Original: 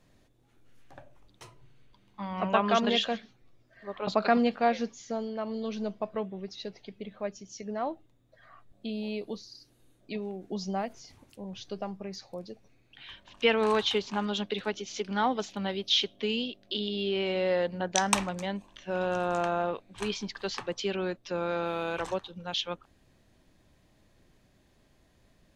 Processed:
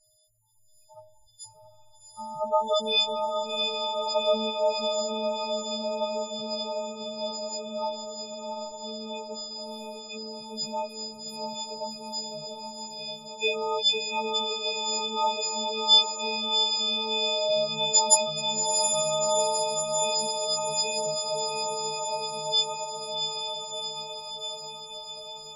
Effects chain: partials quantised in pitch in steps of 6 st; static phaser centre 690 Hz, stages 4; loudest bins only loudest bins 8; on a send: echo that smears into a reverb 731 ms, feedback 70%, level -3.5 dB

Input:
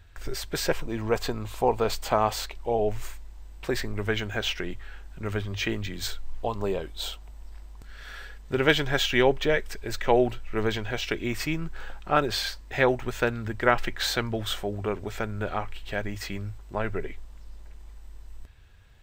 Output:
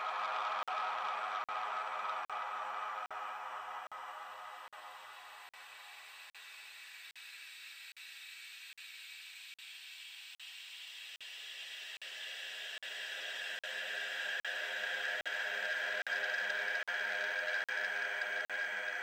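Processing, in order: random holes in the spectrogram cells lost 26%; high-pass 1.4 kHz 12 dB/octave; Paulstretch 42×, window 0.25 s, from 15.57 s; on a send: flutter echo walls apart 9.2 m, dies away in 0.28 s; on the sum: crackling interface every 0.81 s, samples 2048, zero, from 0.63 s; transformer saturation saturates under 2.1 kHz

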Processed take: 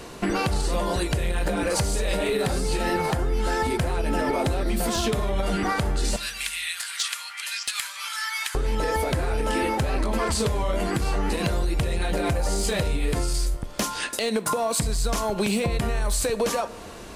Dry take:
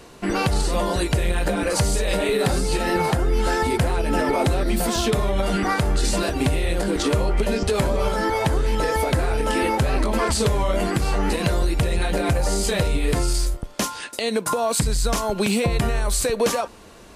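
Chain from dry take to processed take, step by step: 6.16–8.55 s: Bessel high-pass 2.2 kHz, order 6; compression 5:1, threshold -27 dBFS, peak gain reduction 10.5 dB; hard clipper -22 dBFS, distortion -27 dB; reverberation RT60 1.2 s, pre-delay 8 ms, DRR 15 dB; trim +5 dB

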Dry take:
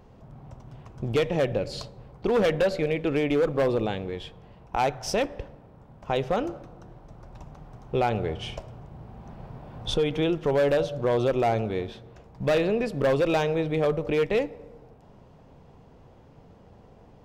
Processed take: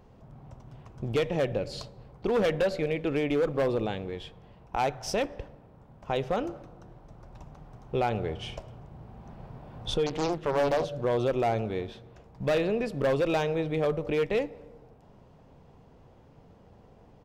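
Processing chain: speakerphone echo 240 ms, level -30 dB; 10.06–10.85 s: loudspeaker Doppler distortion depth 0.91 ms; trim -3 dB

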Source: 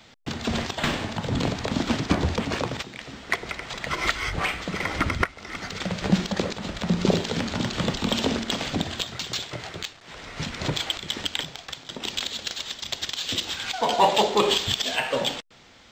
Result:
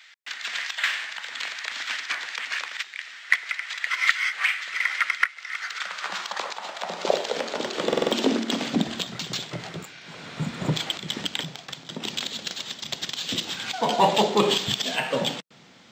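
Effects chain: spectral replace 9.83–10.68 s, 1.4–6.8 kHz both; high-pass sweep 1.8 kHz -> 160 Hz, 5.44–9.24 s; buffer glitch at 7.88 s, samples 2048, times 4; trim -1 dB

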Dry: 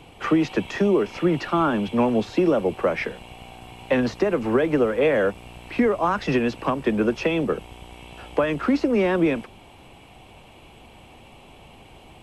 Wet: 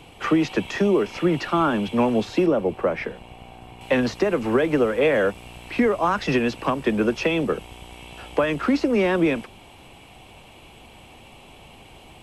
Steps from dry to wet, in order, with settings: treble shelf 2.2 kHz +3.5 dB, from 2.46 s -6.5 dB, from 3.81 s +4.5 dB

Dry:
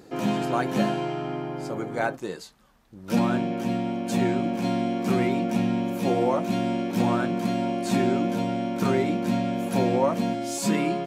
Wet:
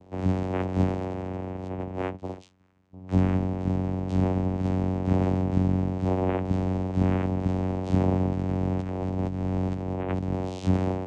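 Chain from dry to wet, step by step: vocoder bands 4, saw 92.8 Hz; 8.35–10.49 s: compressor with a negative ratio -28 dBFS, ratio -1

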